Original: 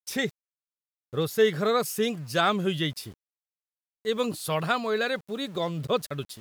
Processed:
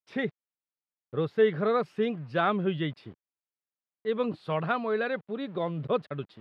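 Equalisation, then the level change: BPF 120–7100 Hz; air absorption 450 m; 0.0 dB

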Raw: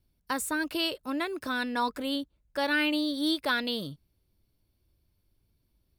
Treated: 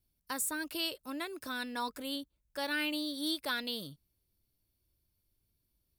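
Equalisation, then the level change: high shelf 4900 Hz +11.5 dB; -8.5 dB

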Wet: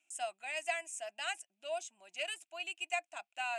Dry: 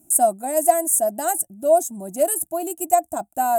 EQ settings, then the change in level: ladder band-pass 2800 Hz, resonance 70%; air absorption 130 m; +14.0 dB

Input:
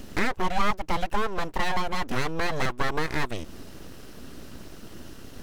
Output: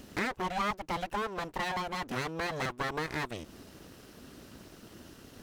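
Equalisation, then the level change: HPF 78 Hz 6 dB/oct; -5.5 dB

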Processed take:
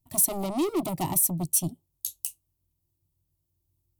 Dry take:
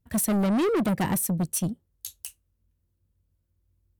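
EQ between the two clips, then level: high shelf 7300 Hz +8.5 dB; fixed phaser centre 320 Hz, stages 8; 0.0 dB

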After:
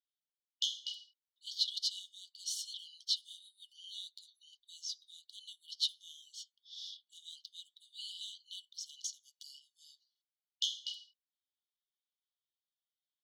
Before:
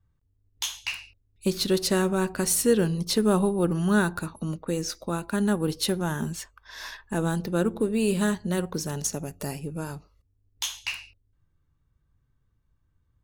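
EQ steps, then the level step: brick-wall FIR high-pass 2900 Hz; air absorption 210 m; +4.0 dB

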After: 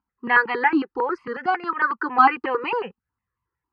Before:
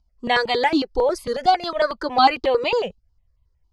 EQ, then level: speaker cabinet 360–2800 Hz, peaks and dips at 440 Hz -3 dB, 630 Hz -7 dB, 2200 Hz -8 dB; fixed phaser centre 1500 Hz, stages 4; +8.0 dB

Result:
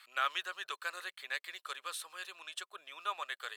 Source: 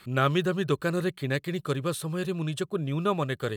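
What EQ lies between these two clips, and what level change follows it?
Bessel high-pass 1300 Hz, order 4; high shelf 8900 Hz -6.5 dB; -2.5 dB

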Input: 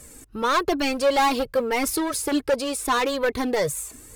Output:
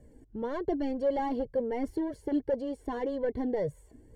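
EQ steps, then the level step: running mean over 35 samples; -4.5 dB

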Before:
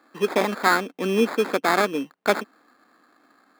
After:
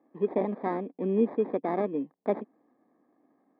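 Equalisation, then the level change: running mean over 31 samples; air absorption 310 m; -2.5 dB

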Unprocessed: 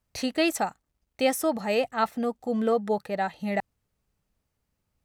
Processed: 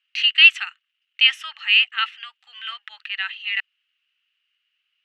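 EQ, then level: steep high-pass 1400 Hz 36 dB/oct; synth low-pass 2900 Hz, resonance Q 12; +5.0 dB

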